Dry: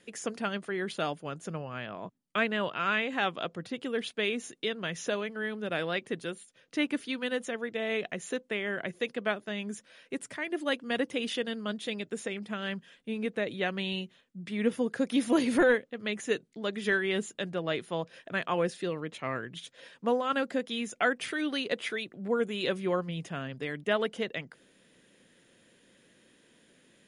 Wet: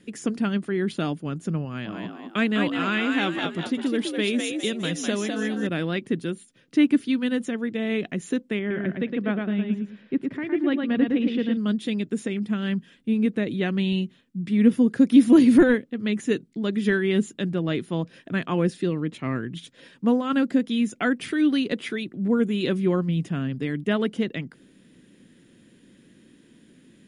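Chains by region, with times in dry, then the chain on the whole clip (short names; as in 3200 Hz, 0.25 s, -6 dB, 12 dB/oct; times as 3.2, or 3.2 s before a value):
1.65–5.67 tone controls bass -3 dB, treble +8 dB + frequency-shifting echo 0.203 s, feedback 38%, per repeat +66 Hz, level -4 dB
8.59–11.57 air absorption 310 m + feedback echo 0.112 s, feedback 23%, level -4 dB
whole clip: resonant low shelf 400 Hz +9.5 dB, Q 1.5; notch 6400 Hz, Q 25; gain +1.5 dB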